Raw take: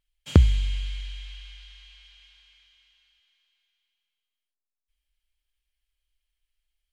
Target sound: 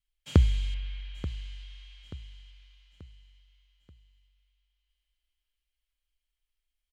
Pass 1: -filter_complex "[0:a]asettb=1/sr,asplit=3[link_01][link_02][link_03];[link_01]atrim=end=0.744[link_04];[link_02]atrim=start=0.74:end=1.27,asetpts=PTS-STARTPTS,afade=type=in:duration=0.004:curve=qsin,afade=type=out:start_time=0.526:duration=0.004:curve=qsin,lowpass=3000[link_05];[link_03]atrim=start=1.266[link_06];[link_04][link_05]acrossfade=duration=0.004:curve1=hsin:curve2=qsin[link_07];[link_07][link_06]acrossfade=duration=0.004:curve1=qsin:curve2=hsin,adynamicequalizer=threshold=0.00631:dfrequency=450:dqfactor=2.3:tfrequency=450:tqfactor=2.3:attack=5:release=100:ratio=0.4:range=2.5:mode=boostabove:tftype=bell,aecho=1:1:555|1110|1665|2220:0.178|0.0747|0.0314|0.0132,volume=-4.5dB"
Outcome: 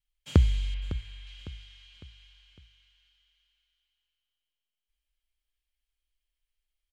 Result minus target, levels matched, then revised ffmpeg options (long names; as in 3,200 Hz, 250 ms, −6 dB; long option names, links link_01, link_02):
echo 328 ms early
-filter_complex "[0:a]asettb=1/sr,asplit=3[link_01][link_02][link_03];[link_01]atrim=end=0.744[link_04];[link_02]atrim=start=0.74:end=1.27,asetpts=PTS-STARTPTS,afade=type=in:duration=0.004:curve=qsin,afade=type=out:start_time=0.526:duration=0.004:curve=qsin,lowpass=3000[link_05];[link_03]atrim=start=1.266[link_06];[link_04][link_05]acrossfade=duration=0.004:curve1=hsin:curve2=qsin[link_07];[link_07][link_06]acrossfade=duration=0.004:curve1=qsin:curve2=hsin,adynamicequalizer=threshold=0.00631:dfrequency=450:dqfactor=2.3:tfrequency=450:tqfactor=2.3:attack=5:release=100:ratio=0.4:range=2.5:mode=boostabove:tftype=bell,aecho=1:1:883|1766|2649|3532:0.178|0.0747|0.0314|0.0132,volume=-4.5dB"